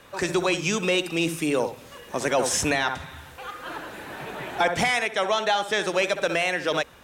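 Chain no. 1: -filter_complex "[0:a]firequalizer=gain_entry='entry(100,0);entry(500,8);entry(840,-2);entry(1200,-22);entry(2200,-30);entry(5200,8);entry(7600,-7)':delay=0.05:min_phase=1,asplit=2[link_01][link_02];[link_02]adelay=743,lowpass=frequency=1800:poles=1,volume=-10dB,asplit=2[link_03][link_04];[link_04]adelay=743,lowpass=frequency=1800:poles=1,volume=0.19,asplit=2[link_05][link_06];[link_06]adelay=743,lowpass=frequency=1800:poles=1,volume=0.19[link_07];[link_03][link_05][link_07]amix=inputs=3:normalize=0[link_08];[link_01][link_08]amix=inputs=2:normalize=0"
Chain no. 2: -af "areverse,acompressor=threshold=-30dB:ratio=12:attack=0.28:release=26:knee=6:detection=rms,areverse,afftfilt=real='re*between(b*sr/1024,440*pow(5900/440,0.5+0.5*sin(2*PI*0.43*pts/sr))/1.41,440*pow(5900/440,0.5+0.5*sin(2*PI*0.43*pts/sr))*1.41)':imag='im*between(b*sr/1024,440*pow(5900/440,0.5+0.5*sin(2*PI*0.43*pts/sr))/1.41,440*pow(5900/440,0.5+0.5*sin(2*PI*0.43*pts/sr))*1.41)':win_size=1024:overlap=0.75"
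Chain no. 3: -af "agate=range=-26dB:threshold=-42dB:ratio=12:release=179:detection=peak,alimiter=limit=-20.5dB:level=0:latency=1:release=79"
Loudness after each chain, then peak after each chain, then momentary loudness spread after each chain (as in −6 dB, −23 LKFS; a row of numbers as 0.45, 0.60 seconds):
−22.0, −43.5, −31.0 LKFS; −6.5, −28.5, −20.5 dBFS; 14, 9, 9 LU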